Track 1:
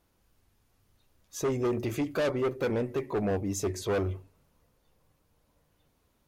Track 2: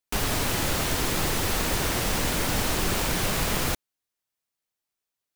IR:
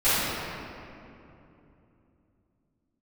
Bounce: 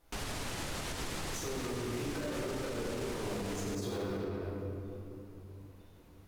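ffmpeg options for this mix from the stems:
-filter_complex "[0:a]acompressor=threshold=-39dB:ratio=6,acrusher=bits=4:mode=log:mix=0:aa=0.000001,volume=-4dB,asplit=2[a][b];[b]volume=-6dB[c];[1:a]lowpass=10k,volume=-11dB[d];[2:a]atrim=start_sample=2205[e];[c][e]afir=irnorm=-1:irlink=0[f];[a][d][f]amix=inputs=3:normalize=0,alimiter=level_in=4.5dB:limit=-24dB:level=0:latency=1:release=67,volume=-4.5dB"

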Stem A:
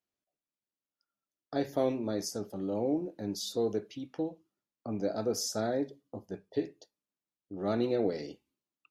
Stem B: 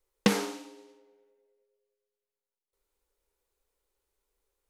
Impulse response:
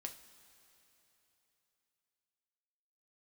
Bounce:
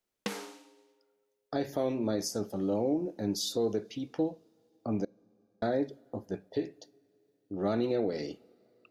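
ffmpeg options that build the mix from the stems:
-filter_complex "[0:a]volume=3dB,asplit=3[a][b][c];[a]atrim=end=5.05,asetpts=PTS-STARTPTS,afade=t=out:st=5.046:d=0.004:c=hsin[d];[b]atrim=start=5.05:end=5.62,asetpts=PTS-STARTPTS,volume=0[e];[c]atrim=start=5.62,asetpts=PTS-STARTPTS,afade=t=in:d=0.004:c=hsin[f];[d][e][f]concat=n=3:v=0:a=1,asplit=2[g][h];[h]volume=-13.5dB[i];[1:a]lowshelf=f=190:g=-10.5,volume=-8.5dB[j];[2:a]atrim=start_sample=2205[k];[i][k]afir=irnorm=-1:irlink=0[l];[g][j][l]amix=inputs=3:normalize=0,alimiter=limit=-20dB:level=0:latency=1:release=164"

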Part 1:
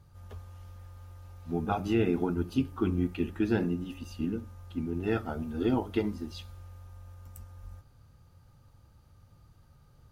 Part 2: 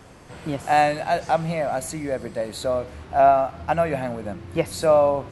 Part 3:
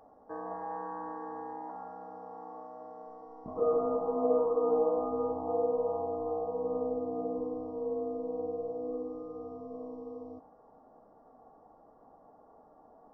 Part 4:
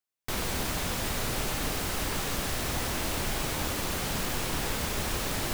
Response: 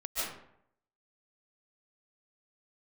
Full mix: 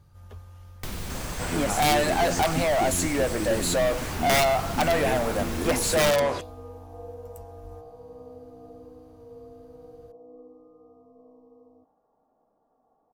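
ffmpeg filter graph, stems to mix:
-filter_complex "[0:a]acompressor=threshold=-28dB:ratio=6,volume=1dB[a];[1:a]highshelf=f=5.1k:t=q:w=1.5:g=7,asplit=2[b][c];[c]highpass=f=720:p=1,volume=28dB,asoftclip=type=tanh:threshold=-6dB[d];[b][d]amix=inputs=2:normalize=0,lowpass=f=5.4k:p=1,volume=-6dB,aeval=exprs='(mod(2.51*val(0)+1,2)-1)/2.51':c=same,adelay=1100,volume=-9.5dB[e];[2:a]adelay=1450,volume=-11.5dB[f];[3:a]acrossover=split=240|2400[g][h][i];[g]acompressor=threshold=-33dB:ratio=4[j];[h]acompressor=threshold=-46dB:ratio=4[k];[i]acompressor=threshold=-44dB:ratio=4[l];[j][k][l]amix=inputs=3:normalize=0,adelay=550,volume=2.5dB[m];[a][e][f][m]amix=inputs=4:normalize=0"

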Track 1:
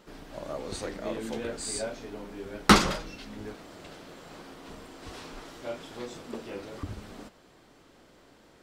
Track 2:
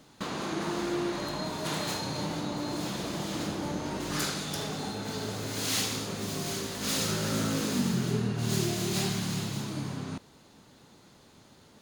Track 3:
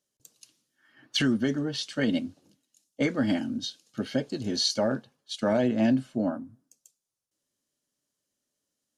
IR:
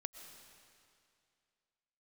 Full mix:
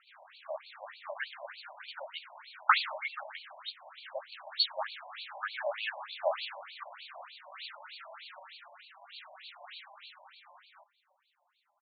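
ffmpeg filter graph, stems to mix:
-filter_complex "[0:a]lowpass=f=6.8k:t=q:w=4.9,volume=1dB[a];[1:a]asplit=2[b][c];[c]adelay=4.9,afreqshift=2.2[d];[b][d]amix=inputs=2:normalize=1,adelay=650,volume=-7.5dB[e];[2:a]acrusher=bits=6:mix=0:aa=0.000001,volume=1dB[f];[a][e][f]amix=inputs=3:normalize=0,dynaudnorm=f=290:g=13:m=4.5dB,afftfilt=real='re*between(b*sr/1024,730*pow(3300/730,0.5+0.5*sin(2*PI*3.3*pts/sr))/1.41,730*pow(3300/730,0.5+0.5*sin(2*PI*3.3*pts/sr))*1.41)':imag='im*between(b*sr/1024,730*pow(3300/730,0.5+0.5*sin(2*PI*3.3*pts/sr))/1.41,730*pow(3300/730,0.5+0.5*sin(2*PI*3.3*pts/sr))*1.41)':win_size=1024:overlap=0.75"

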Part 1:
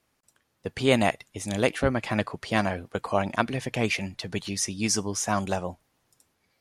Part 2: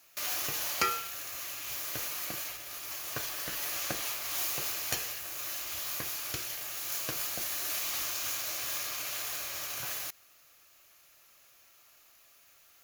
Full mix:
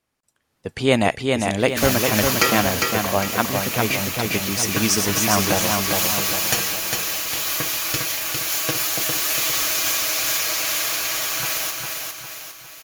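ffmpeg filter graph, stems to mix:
-filter_complex "[0:a]volume=-4.5dB,asplit=2[a][b];[b]volume=-4dB[c];[1:a]highshelf=f=11k:g=-4.5,aecho=1:1:6.2:0.65,adelay=1600,volume=1dB,asplit=2[d][e];[e]volume=-4dB[f];[c][f]amix=inputs=2:normalize=0,aecho=0:1:404|808|1212|1616|2020|2424|2828:1|0.47|0.221|0.104|0.0488|0.0229|0.0108[g];[a][d][g]amix=inputs=3:normalize=0,dynaudnorm=f=360:g=3:m=10.5dB"

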